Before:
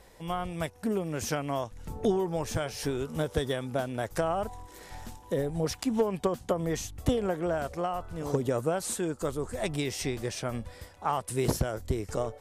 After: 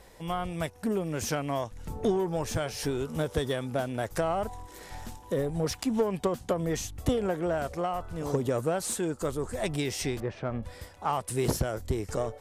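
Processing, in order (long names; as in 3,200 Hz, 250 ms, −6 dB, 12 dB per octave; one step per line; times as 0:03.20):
0:10.20–0:10.63: low-pass filter 1,700 Hz 12 dB per octave
in parallel at −5 dB: soft clipping −29 dBFS, distortion −9 dB
on the sum: level −2 dB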